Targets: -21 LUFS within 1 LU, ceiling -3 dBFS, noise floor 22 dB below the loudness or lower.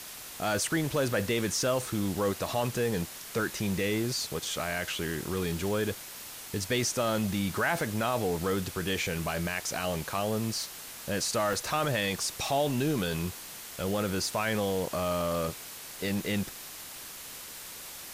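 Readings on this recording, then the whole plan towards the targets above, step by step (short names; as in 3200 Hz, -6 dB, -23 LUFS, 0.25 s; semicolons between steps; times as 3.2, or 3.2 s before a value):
dropouts 3; longest dropout 1.1 ms; noise floor -44 dBFS; noise floor target -53 dBFS; loudness -31.0 LUFS; peak -15.0 dBFS; loudness target -21.0 LUFS
-> interpolate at 1.09/2.19/11.53, 1.1 ms; noise print and reduce 9 dB; gain +10 dB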